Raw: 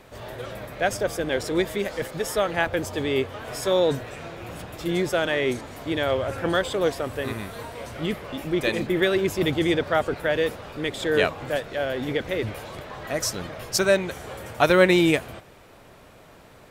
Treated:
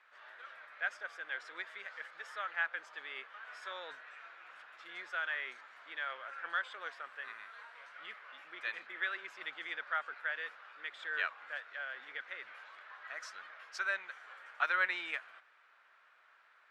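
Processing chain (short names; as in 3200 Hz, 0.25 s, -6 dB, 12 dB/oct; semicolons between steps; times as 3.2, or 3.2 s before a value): ladder band-pass 1700 Hz, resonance 50%; gain -1 dB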